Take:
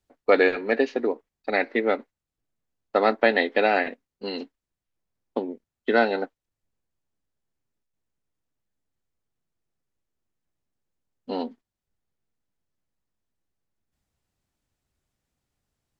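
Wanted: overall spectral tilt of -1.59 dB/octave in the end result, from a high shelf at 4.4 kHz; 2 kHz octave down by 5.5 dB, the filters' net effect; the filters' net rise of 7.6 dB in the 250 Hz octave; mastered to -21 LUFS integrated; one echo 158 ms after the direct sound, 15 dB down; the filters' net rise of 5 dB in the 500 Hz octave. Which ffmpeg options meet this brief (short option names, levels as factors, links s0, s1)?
-af "equalizer=f=250:t=o:g=8,equalizer=f=500:t=o:g=4,equalizer=f=2000:t=o:g=-8,highshelf=f=4400:g=4,aecho=1:1:158:0.178,volume=0.944"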